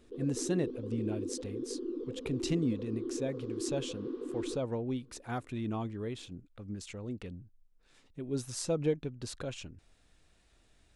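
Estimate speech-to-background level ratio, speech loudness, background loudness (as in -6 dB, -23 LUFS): 2.5 dB, -37.5 LUFS, -40.0 LUFS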